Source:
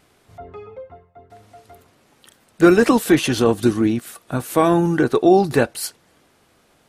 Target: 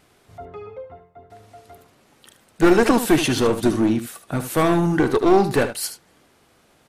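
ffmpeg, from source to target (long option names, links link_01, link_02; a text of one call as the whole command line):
ffmpeg -i in.wav -af "aeval=exprs='clip(val(0),-1,0.178)':channel_layout=same,aecho=1:1:75:0.282" out.wav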